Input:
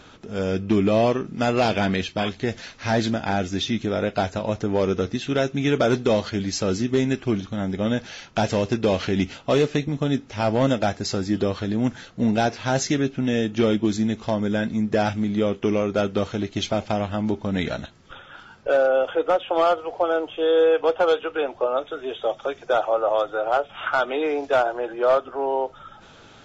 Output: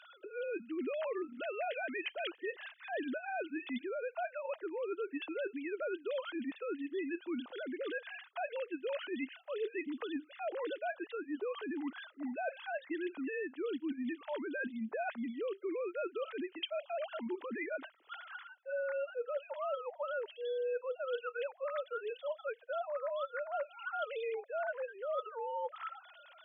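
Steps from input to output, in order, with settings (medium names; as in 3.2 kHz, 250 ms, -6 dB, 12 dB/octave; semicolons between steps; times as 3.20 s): formants replaced by sine waves; high-pass 380 Hz 12 dB/octave; peaking EQ 570 Hz -5.5 dB 2.2 oct; band-stop 2.3 kHz, Q 19; reverse; compression 8:1, threshold -37 dBFS, peak gain reduction 21 dB; reverse; trim +1.5 dB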